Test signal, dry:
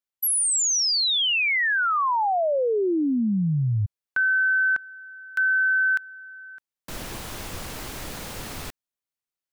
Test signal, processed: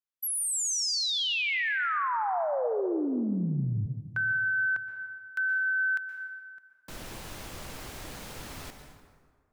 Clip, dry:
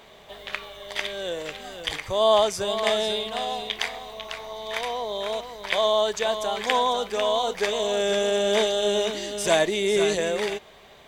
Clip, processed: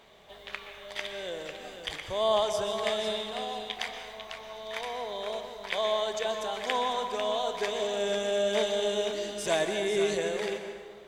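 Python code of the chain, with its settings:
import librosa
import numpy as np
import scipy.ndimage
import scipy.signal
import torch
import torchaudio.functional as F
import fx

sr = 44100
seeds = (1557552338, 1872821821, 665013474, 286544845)

y = fx.high_shelf(x, sr, hz=11000.0, db=-3.0)
y = fx.rev_plate(y, sr, seeds[0], rt60_s=1.7, hf_ratio=0.6, predelay_ms=110, drr_db=6.5)
y = y * librosa.db_to_amplitude(-7.0)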